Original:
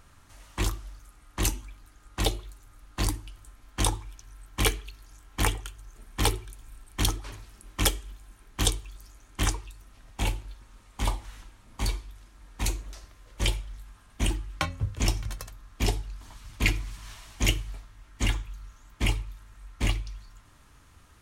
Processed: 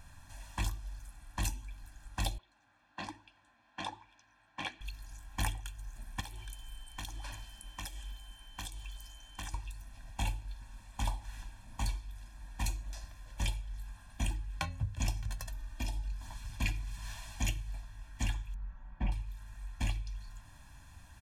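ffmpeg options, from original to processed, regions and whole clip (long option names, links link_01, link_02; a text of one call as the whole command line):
ffmpeg -i in.wav -filter_complex "[0:a]asettb=1/sr,asplit=3[link_01][link_02][link_03];[link_01]atrim=end=2.384[link_04];[link_02]atrim=start=2.38:end=4.81,asetpts=PTS-STARTPTS,afade=type=in:duration=0.004:curve=qsin,afade=type=out:start_time=2.426:duration=0.004:curve=qsin,highpass=270,lowpass=3200,flanger=delay=2:depth=7.1:regen=71:speed=1.2:shape=sinusoidal[link_05];[link_03]atrim=start=4.806[link_06];[link_04][link_05]acrossfade=duration=0.004:curve1=hsin:curve2=qsin[link_07];[link_07][link_06]acrossfade=duration=0.004:curve1=qsin:curve2=hsin,asettb=1/sr,asplit=3[link_08][link_09][link_10];[link_08]atrim=end=6.204[link_11];[link_09]atrim=start=6.2:end=9.54,asetpts=PTS-STARTPTS,afade=type=in:duration=0.004:curve=qsin,afade=type=out:start_time=3.336:duration=0.004:curve=qsin,aeval=exprs='val(0)+0.00224*sin(2*PI*3100*n/s)':channel_layout=same,equalizer=frequency=110:width_type=o:width=2.7:gain=-7,acompressor=threshold=-37dB:ratio=16:attack=3.2:release=140:knee=1:detection=peak[link_12];[link_10]atrim=start=9.536[link_13];[link_11][link_12]acrossfade=duration=0.004:curve1=hsin:curve2=qsin[link_14];[link_14][link_13]acrossfade=duration=0.004:curve1=qsin:curve2=hsin,asettb=1/sr,asplit=3[link_15][link_16][link_17];[link_15]atrim=end=15.474[link_18];[link_16]atrim=start=15.47:end=16.12,asetpts=PTS-STARTPTS,afade=type=in:duration=0.004:curve=qsin,afade=type=out:start_time=0.646:duration=0.004:curve=qsin,aecho=1:1:3.3:0.71,atrim=end_sample=28665,acompressor=threshold=-32dB:ratio=2.5:attack=3.2:release=140:knee=1:detection=peak[link_19];[link_17]atrim=start=16.116[link_20];[link_18][link_19]acrossfade=duration=0.004:curve1=hsin:curve2=qsin[link_21];[link_21][link_20]acrossfade=duration=0.004:curve1=qsin:curve2=hsin,asettb=1/sr,asplit=3[link_22][link_23][link_24];[link_22]atrim=end=18.544[link_25];[link_23]atrim=start=18.54:end=19.12,asetpts=PTS-STARTPTS,afade=type=in:duration=0.004:curve=qsin,afade=type=out:start_time=0.576:duration=0.004:curve=qsin,lowpass=1400,aecho=1:1:5.3:0.52,atrim=end_sample=25578[link_26];[link_24]atrim=start=19.116[link_27];[link_25][link_26]acrossfade=duration=0.004:curve1=hsin:curve2=qsin[link_28];[link_28][link_27]acrossfade=duration=0.004:curve1=qsin:curve2=hsin,acompressor=threshold=-39dB:ratio=2,aecho=1:1:1.2:0.98,volume=-3dB" out.wav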